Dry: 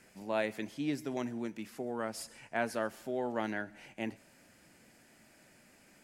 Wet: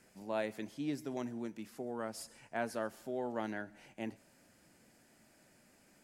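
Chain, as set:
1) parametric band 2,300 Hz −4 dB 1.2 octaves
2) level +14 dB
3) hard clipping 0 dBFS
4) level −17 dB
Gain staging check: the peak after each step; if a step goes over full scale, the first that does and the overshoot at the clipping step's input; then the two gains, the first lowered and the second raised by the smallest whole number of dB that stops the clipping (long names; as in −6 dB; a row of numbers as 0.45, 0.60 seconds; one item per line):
−19.0, −5.0, −5.0, −22.0 dBFS
no step passes full scale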